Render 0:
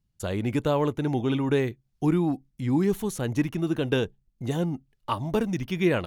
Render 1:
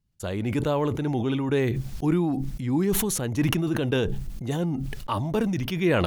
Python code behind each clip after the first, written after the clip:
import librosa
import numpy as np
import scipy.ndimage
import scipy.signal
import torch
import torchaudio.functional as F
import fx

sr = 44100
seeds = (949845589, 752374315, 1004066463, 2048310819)

y = fx.sustainer(x, sr, db_per_s=23.0)
y = y * 10.0 ** (-1.0 / 20.0)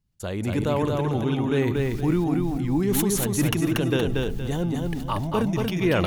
y = fx.echo_feedback(x, sr, ms=234, feedback_pct=31, wet_db=-3.0)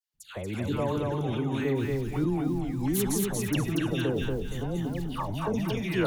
y = fx.dispersion(x, sr, late='lows', ms=141.0, hz=1300.0)
y = y * 10.0 ** (-5.0 / 20.0)